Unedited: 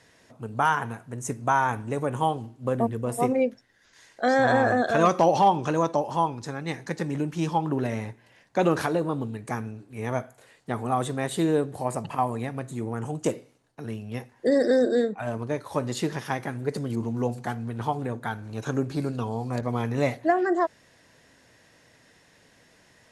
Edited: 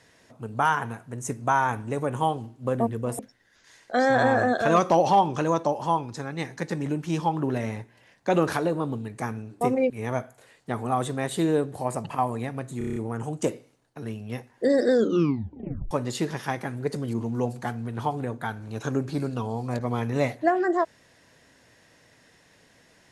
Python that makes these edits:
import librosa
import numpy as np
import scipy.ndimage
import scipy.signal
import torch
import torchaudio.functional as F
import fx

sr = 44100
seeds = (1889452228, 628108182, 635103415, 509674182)

y = fx.edit(x, sr, fx.move(start_s=3.19, length_s=0.29, to_s=9.9),
    fx.stutter(start_s=12.78, slice_s=0.03, count=7),
    fx.tape_stop(start_s=14.73, length_s=1.0), tone=tone)